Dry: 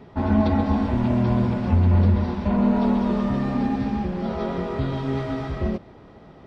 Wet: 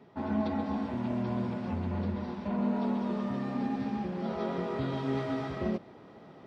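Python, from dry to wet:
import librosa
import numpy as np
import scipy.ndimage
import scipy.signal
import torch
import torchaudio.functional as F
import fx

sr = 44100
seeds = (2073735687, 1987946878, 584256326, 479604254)

y = scipy.signal.sosfilt(scipy.signal.butter(2, 150.0, 'highpass', fs=sr, output='sos'), x)
y = fx.rider(y, sr, range_db=10, speed_s=2.0)
y = y * 10.0 ** (-8.5 / 20.0)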